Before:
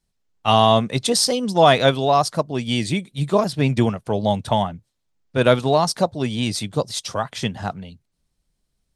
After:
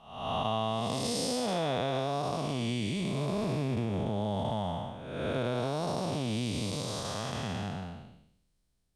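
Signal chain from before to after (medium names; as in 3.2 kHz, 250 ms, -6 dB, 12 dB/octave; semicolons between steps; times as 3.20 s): spectral blur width 463 ms; compression 5:1, threshold -26 dBFS, peak gain reduction 10.5 dB; trim -2 dB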